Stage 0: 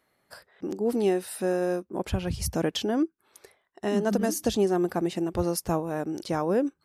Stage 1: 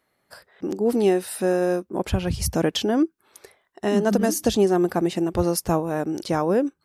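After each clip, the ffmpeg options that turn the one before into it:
-af "dynaudnorm=f=120:g=7:m=1.78"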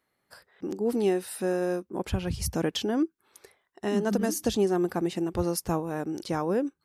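-af "equalizer=f=630:t=o:w=0.34:g=-4,volume=0.531"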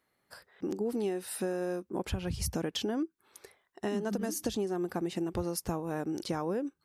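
-af "acompressor=threshold=0.0355:ratio=6"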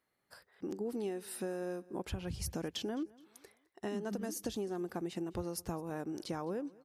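-af "aecho=1:1:211|422|633:0.0708|0.0269|0.0102,volume=0.531"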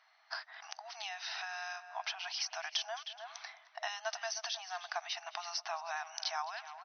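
-filter_complex "[0:a]asplit=2[s0][s1];[s1]adelay=310,highpass=300,lowpass=3400,asoftclip=type=hard:threshold=0.0237,volume=0.178[s2];[s0][s2]amix=inputs=2:normalize=0,acrossover=split=1700|4500[s3][s4][s5];[s3]acompressor=threshold=0.00398:ratio=4[s6];[s4]acompressor=threshold=0.00126:ratio=4[s7];[s5]acompressor=threshold=0.00224:ratio=4[s8];[s6][s7][s8]amix=inputs=3:normalize=0,afftfilt=real='re*between(b*sr/4096,630,6200)':imag='im*between(b*sr/4096,630,6200)':win_size=4096:overlap=0.75,volume=6.68"

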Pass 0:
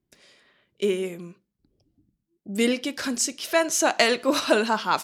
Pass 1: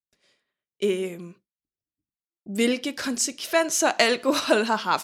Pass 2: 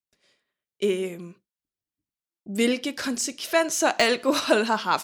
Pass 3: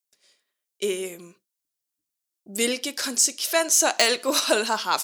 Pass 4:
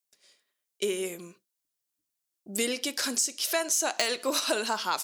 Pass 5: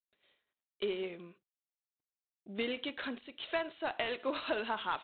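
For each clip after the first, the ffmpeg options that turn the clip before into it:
-af "agate=range=0.0224:threshold=0.00447:ratio=3:detection=peak"
-af "deesser=0.4"
-af "bass=f=250:g=-10,treble=f=4000:g=11,volume=0.891"
-af "acompressor=threshold=0.0501:ratio=3"
-af "volume=0.531" -ar 8000 -c:a adpcm_ima_wav

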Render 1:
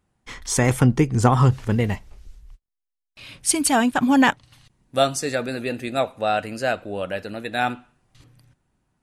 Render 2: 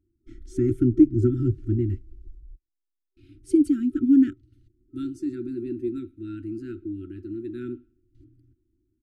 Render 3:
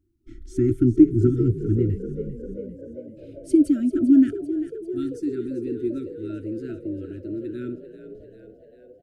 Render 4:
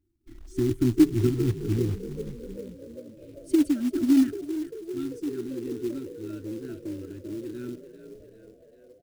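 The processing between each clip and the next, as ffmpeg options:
-af "afftfilt=real='re*(1-between(b*sr/4096,380,1300))':imag='im*(1-between(b*sr/4096,380,1300))':win_size=4096:overlap=0.75,firequalizer=gain_entry='entry(110,0);entry(150,-21);entry(310,8);entry(1600,-28)':delay=0.05:min_phase=1"
-filter_complex "[0:a]asplit=9[s0][s1][s2][s3][s4][s5][s6][s7][s8];[s1]adelay=394,afreqshift=42,volume=0.237[s9];[s2]adelay=788,afreqshift=84,volume=0.151[s10];[s3]adelay=1182,afreqshift=126,volume=0.0966[s11];[s4]adelay=1576,afreqshift=168,volume=0.0624[s12];[s5]adelay=1970,afreqshift=210,volume=0.0398[s13];[s6]adelay=2364,afreqshift=252,volume=0.0254[s14];[s7]adelay=2758,afreqshift=294,volume=0.0162[s15];[s8]adelay=3152,afreqshift=336,volume=0.0105[s16];[s0][s9][s10][s11][s12][s13][s14][s15][s16]amix=inputs=9:normalize=0,volume=1.26"
-af "acrusher=bits=5:mode=log:mix=0:aa=0.000001,volume=0.596"

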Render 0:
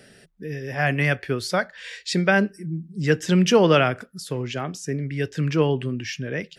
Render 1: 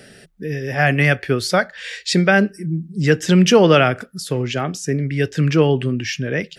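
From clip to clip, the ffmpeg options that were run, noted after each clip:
-filter_complex "[0:a]bandreject=f=1000:w=11,asplit=2[s0][s1];[s1]alimiter=limit=0.224:level=0:latency=1:release=219,volume=0.794[s2];[s0][s2]amix=inputs=2:normalize=0,volume=1.19"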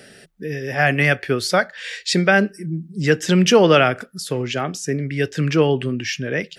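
-af "lowshelf=f=160:g=-7"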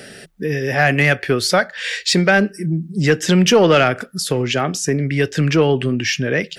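-filter_complex "[0:a]asplit=2[s0][s1];[s1]acompressor=threshold=0.0631:ratio=6,volume=1.33[s2];[s0][s2]amix=inputs=2:normalize=0,asoftclip=type=tanh:threshold=0.668"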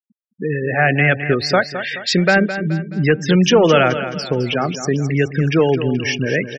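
-filter_complex "[0:a]highshelf=f=9200:g=-10,afftfilt=real='re*gte(hypot(re,im),0.1)':imag='im*gte(hypot(re,im),0.1)':win_size=1024:overlap=0.75,asplit=2[s0][s1];[s1]aecho=0:1:213|426|639|852:0.282|0.118|0.0497|0.0209[s2];[s0][s2]amix=inputs=2:normalize=0"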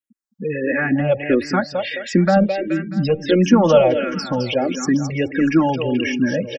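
-filter_complex "[0:a]aecho=1:1:3.6:0.65,acrossover=split=450|770[s0][s1][s2];[s2]acompressor=threshold=0.0447:ratio=4[s3];[s0][s1][s3]amix=inputs=3:normalize=0,asplit=2[s4][s5];[s5]afreqshift=-1.5[s6];[s4][s6]amix=inputs=2:normalize=1,volume=1.5"

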